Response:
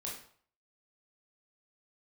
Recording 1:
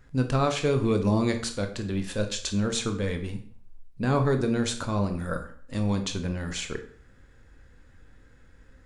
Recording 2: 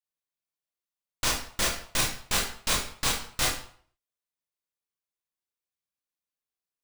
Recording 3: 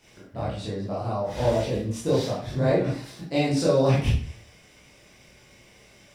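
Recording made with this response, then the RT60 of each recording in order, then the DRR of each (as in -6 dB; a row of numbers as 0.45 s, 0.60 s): 2; 0.55 s, 0.55 s, 0.55 s; 6.0 dB, -4.0 dB, -8.0 dB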